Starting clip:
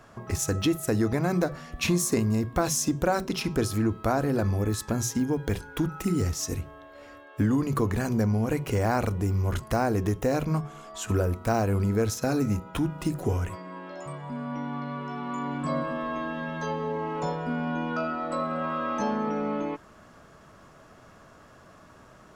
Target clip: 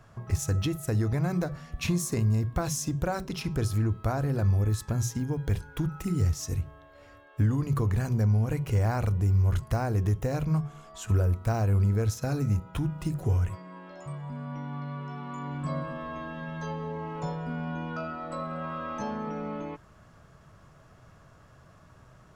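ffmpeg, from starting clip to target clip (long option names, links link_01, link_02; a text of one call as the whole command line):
ffmpeg -i in.wav -af "lowshelf=frequency=180:width_type=q:width=1.5:gain=7.5,volume=-5.5dB" out.wav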